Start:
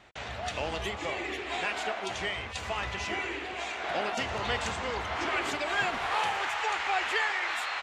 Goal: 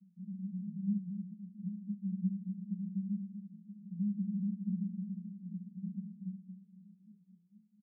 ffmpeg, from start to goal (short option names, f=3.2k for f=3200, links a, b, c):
-af "asuperpass=centerf=190:order=8:qfactor=4.9,aecho=1:1:238:0.355,volume=15.5dB"